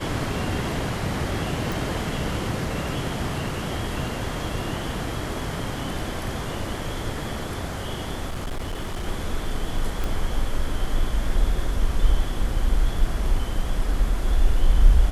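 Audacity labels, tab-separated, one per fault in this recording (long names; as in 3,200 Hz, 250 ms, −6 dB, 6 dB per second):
1.720000	1.720000	click
8.290000	9.040000	clipping −25 dBFS
10.040000	10.040000	click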